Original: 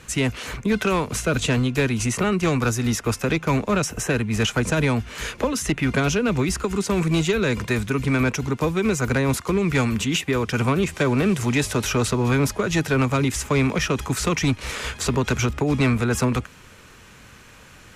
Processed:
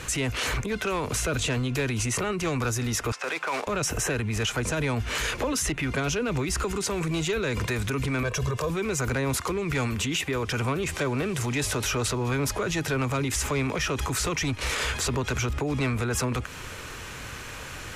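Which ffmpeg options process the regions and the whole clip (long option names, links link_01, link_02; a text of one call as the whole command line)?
ffmpeg -i in.wav -filter_complex "[0:a]asettb=1/sr,asplit=3[link_01][link_02][link_03];[link_01]atrim=end=3.124[link_04];[link_02]atrim=start=3.12:end=3.67,asetpts=PTS-STARTPTS,afade=type=in:duration=0.004:curve=qsin,afade=type=out:start_time=0.546:duration=0.004:curve=qsin,aemphasis=mode=reproduction:type=75fm,acrusher=bits=5:mode=log:mix=0:aa=0.000001,highpass=760,lowpass=7900[link_05];[link_03]atrim=start=3.666[link_06];[link_04][link_05]acrossfade=duration=0.004:curve1=hsin:curve2=qsin[link_07];[link_07][link_06]acrossfade=duration=0.004:curve1=qsin:curve2=hsin,asettb=1/sr,asplit=3[link_08][link_09][link_10];[link_08]atrim=end=8.234[link_11];[link_09]atrim=start=8.23:end=8.7,asetpts=PTS-STARTPTS,afade=type=in:duration=0.004:curve=qsin,afade=type=out:start_time=0.466:duration=0.004:curve=qsin,equalizer=frequency=2200:width_type=o:width=0.25:gain=-6,aecho=1:1:1.8:0.83,atrim=end_sample=20727,acompressor=threshold=-24dB:ratio=6:attack=3.2:release=140:knee=1:detection=peak[link_12];[link_10]atrim=start=8.696[link_13];[link_11][link_12]acrossfade=duration=0.004:curve1=hsin:curve2=qsin[link_14];[link_14][link_13]acrossfade=duration=0.004:curve1=qsin:curve2=hsin,acompressor=threshold=-26dB:ratio=6,alimiter=level_in=4dB:limit=-24dB:level=0:latency=1:release=23,volume=-4dB,equalizer=frequency=200:width_type=o:width=0.66:gain=-7,volume=9dB" out.wav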